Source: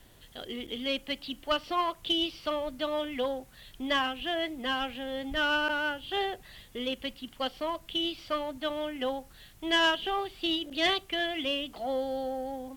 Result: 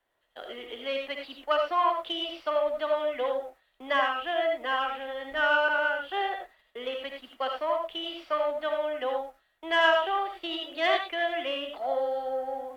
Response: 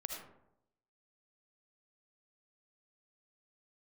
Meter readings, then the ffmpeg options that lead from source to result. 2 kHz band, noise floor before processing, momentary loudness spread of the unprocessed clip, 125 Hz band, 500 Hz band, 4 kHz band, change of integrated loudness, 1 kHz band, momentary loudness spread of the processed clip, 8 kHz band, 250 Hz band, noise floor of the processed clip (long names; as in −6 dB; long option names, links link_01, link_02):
+3.5 dB, −55 dBFS, 10 LU, below −15 dB, +5.0 dB, −3.5 dB, +2.5 dB, +5.0 dB, 13 LU, can't be measured, −7.0 dB, −71 dBFS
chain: -filter_complex "[0:a]agate=range=-17dB:threshold=-46dB:ratio=16:detection=peak,acrossover=split=440 2200:gain=0.0794 1 0.178[link_01][link_02][link_03];[link_01][link_02][link_03]amix=inputs=3:normalize=0[link_04];[1:a]atrim=start_sample=2205,afade=type=out:start_time=0.16:duration=0.01,atrim=end_sample=7497[link_05];[link_04][link_05]afir=irnorm=-1:irlink=0,volume=7.5dB"